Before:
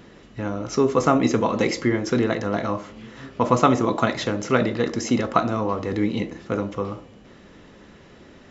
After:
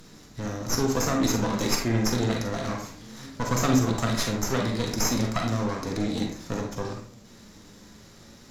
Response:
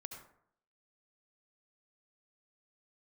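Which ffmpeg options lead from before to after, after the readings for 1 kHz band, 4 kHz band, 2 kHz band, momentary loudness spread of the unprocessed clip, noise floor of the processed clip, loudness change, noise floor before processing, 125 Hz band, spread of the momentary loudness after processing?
-7.5 dB, +2.5 dB, -4.0 dB, 13 LU, -50 dBFS, -4.0 dB, -48 dBFS, +0.5 dB, 12 LU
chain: -filter_complex "[0:a]aexciter=amount=7.5:drive=9.1:freq=4.1k,asplit=2[a][b];[b]alimiter=limit=-10dB:level=0:latency=1:release=183,volume=0.5dB[c];[a][c]amix=inputs=2:normalize=0,flanger=delay=6.2:depth=4:regen=67:speed=0.32:shape=triangular,acrossover=split=240[d][e];[e]aeval=exprs='max(val(0),0)':c=same[f];[d][f]amix=inputs=2:normalize=0,aemphasis=mode=reproduction:type=cd[g];[1:a]atrim=start_sample=2205,asetrate=79380,aresample=44100[h];[g][h]afir=irnorm=-1:irlink=0,volume=6dB"

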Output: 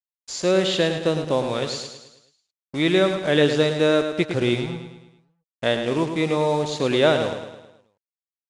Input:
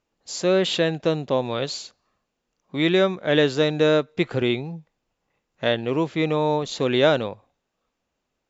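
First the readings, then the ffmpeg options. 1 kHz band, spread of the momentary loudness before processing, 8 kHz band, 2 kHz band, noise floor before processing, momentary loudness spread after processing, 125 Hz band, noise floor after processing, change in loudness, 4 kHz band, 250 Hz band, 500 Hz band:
+0.5 dB, 13 LU, n/a, +1.0 dB, -79 dBFS, 13 LU, +1.0 dB, under -85 dBFS, +0.5 dB, +1.0 dB, +1.0 dB, +0.5 dB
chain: -af "acrusher=bits=5:mix=0:aa=0.5,aecho=1:1:107|214|321|428|535|642:0.398|0.195|0.0956|0.0468|0.023|0.0112,aresample=22050,aresample=44100"

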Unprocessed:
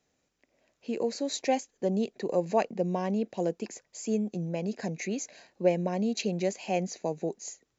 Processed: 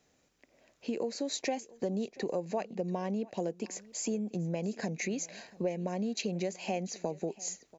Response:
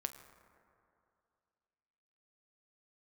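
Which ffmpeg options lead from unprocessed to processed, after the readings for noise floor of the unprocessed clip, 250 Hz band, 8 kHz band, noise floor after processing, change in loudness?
-78 dBFS, -4.0 dB, n/a, -71 dBFS, -4.5 dB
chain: -filter_complex "[0:a]acompressor=threshold=-37dB:ratio=4,asplit=2[a][b];[b]aecho=0:1:688:0.0794[c];[a][c]amix=inputs=2:normalize=0,volume=5dB"

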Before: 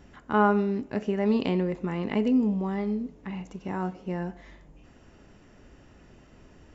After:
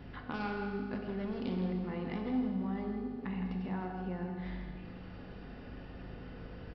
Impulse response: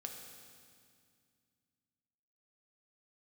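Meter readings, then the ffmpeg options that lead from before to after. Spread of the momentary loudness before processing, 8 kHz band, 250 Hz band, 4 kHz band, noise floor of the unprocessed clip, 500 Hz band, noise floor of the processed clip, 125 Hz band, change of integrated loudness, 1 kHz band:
13 LU, n/a, -9.0 dB, -8.0 dB, -55 dBFS, -12.0 dB, -48 dBFS, -6.0 dB, -11.0 dB, -12.0 dB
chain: -filter_complex "[0:a]aresample=11025,asoftclip=type=hard:threshold=-23dB,aresample=44100,acompressor=threshold=-41dB:ratio=6,aeval=exprs='val(0)+0.00178*(sin(2*PI*50*n/s)+sin(2*PI*2*50*n/s)/2+sin(2*PI*3*50*n/s)/3+sin(2*PI*4*50*n/s)/4+sin(2*PI*5*50*n/s)/5)':c=same,asplit=2[a][b];[b]adelay=163.3,volume=-8dB,highshelf=f=4k:g=-3.67[c];[a][c]amix=inputs=2:normalize=0[d];[1:a]atrim=start_sample=2205[e];[d][e]afir=irnorm=-1:irlink=0,volume=7dB"

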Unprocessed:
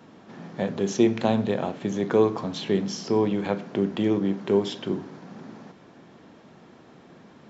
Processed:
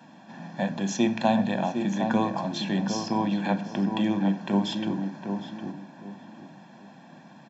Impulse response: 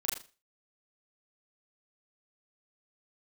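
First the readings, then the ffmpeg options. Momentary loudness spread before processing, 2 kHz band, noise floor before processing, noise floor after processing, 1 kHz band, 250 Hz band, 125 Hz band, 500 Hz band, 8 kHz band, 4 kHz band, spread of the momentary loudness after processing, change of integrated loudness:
19 LU, +2.5 dB, -51 dBFS, -51 dBFS, +3.5 dB, +0.5 dB, 0.0 dB, -7.5 dB, n/a, +1.0 dB, 18 LU, -2.0 dB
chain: -filter_complex "[0:a]highpass=f=150:w=0.5412,highpass=f=150:w=1.3066,aecho=1:1:1.2:0.86,asplit=2[a][b];[b]adelay=759,lowpass=f=1.3k:p=1,volume=-5.5dB,asplit=2[c][d];[d]adelay=759,lowpass=f=1.3k:p=1,volume=0.27,asplit=2[e][f];[f]adelay=759,lowpass=f=1.3k:p=1,volume=0.27,asplit=2[g][h];[h]adelay=759,lowpass=f=1.3k:p=1,volume=0.27[i];[c][e][g][i]amix=inputs=4:normalize=0[j];[a][j]amix=inputs=2:normalize=0,volume=-1.5dB"

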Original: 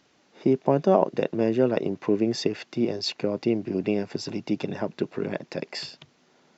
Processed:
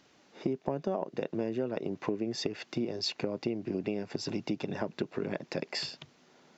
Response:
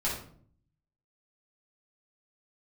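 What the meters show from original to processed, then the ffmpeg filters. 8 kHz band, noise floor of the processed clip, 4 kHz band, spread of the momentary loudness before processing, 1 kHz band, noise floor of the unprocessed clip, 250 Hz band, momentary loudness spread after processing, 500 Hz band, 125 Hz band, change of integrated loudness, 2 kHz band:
n/a, -64 dBFS, -3.5 dB, 11 LU, -10.5 dB, -63 dBFS, -8.5 dB, 3 LU, -10.0 dB, -8.0 dB, -8.5 dB, -4.5 dB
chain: -af "acompressor=threshold=-29dB:ratio=6"

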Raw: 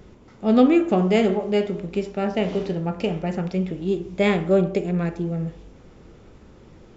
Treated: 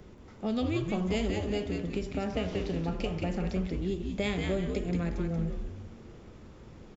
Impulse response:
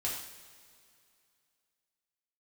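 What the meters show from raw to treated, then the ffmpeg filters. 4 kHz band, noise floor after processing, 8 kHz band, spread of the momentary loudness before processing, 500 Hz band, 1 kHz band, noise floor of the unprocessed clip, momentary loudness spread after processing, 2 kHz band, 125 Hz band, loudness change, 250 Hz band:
-5.0 dB, -51 dBFS, n/a, 10 LU, -12.0 dB, -11.5 dB, -49 dBFS, 20 LU, -8.0 dB, -6.0 dB, -10.0 dB, -10.0 dB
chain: -filter_complex "[0:a]acrossover=split=120|3000[a][b][c];[b]acompressor=threshold=-27dB:ratio=6[d];[a][d][c]amix=inputs=3:normalize=0,asplit=2[e][f];[f]asplit=4[g][h][i][j];[g]adelay=182,afreqshift=-130,volume=-4dB[k];[h]adelay=364,afreqshift=-260,volume=-13.4dB[l];[i]adelay=546,afreqshift=-390,volume=-22.7dB[m];[j]adelay=728,afreqshift=-520,volume=-32.1dB[n];[k][l][m][n]amix=inputs=4:normalize=0[o];[e][o]amix=inputs=2:normalize=0,volume=-3.5dB"

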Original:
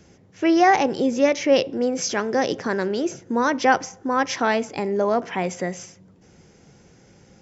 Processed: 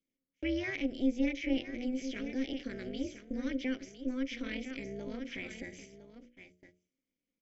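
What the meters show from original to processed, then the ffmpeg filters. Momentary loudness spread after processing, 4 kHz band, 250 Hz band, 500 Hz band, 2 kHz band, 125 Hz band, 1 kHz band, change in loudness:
13 LU, -13.5 dB, -10.0 dB, -20.0 dB, -15.5 dB, -13.5 dB, -34.5 dB, -15.0 dB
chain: -filter_complex "[0:a]asplit=3[a][b][c];[a]bandpass=f=270:t=q:w=8,volume=0dB[d];[b]bandpass=f=2.29k:t=q:w=8,volume=-6dB[e];[c]bandpass=f=3.01k:t=q:w=8,volume=-9dB[f];[d][e][f]amix=inputs=3:normalize=0,aecho=1:1:1008:0.251,agate=range=-25dB:threshold=-51dB:ratio=16:detection=peak,bandreject=f=60:t=h:w=6,bandreject=f=120:t=h:w=6,bandreject=f=180:t=h:w=6,bandreject=f=240:t=h:w=6,bandreject=f=300:t=h:w=6,bandreject=f=360:t=h:w=6,asplit=2[g][h];[h]acompressor=threshold=-37dB:ratio=6,volume=-3dB[i];[g][i]amix=inputs=2:normalize=0,highshelf=f=4.9k:g=7.5,acrossover=split=3800[j][k];[k]acompressor=threshold=-52dB:ratio=4:attack=1:release=60[l];[j][l]amix=inputs=2:normalize=0,tremolo=f=260:d=0.75,aemphasis=mode=production:type=cd,volume=-2.5dB"

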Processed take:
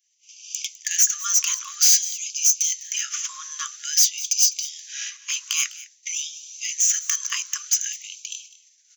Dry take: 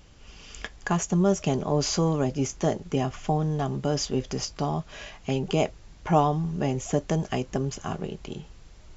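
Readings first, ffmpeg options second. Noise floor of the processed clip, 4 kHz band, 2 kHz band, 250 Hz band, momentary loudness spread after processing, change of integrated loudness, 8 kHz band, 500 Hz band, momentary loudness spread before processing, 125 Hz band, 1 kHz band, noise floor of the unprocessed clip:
-59 dBFS, +11.0 dB, +5.0 dB, under -40 dB, 14 LU, +6.5 dB, n/a, under -40 dB, 14 LU, under -40 dB, -13.5 dB, -50 dBFS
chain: -filter_complex "[0:a]equalizer=f=6.1k:w=5.4:g=12.5,agate=range=-33dB:threshold=-36dB:ratio=3:detection=peak,acrossover=split=120|3100[a][b][c];[c]asoftclip=type=tanh:threshold=-30dB[d];[a][b][d]amix=inputs=3:normalize=0,crystalizer=i=7:c=0,asplit=2[e][f];[f]aecho=0:1:204:0.126[g];[e][g]amix=inputs=2:normalize=0,afftfilt=real='re*gte(b*sr/1024,970*pow(2300/970,0.5+0.5*sin(2*PI*0.51*pts/sr)))':imag='im*gte(b*sr/1024,970*pow(2300/970,0.5+0.5*sin(2*PI*0.51*pts/sr)))':win_size=1024:overlap=0.75"

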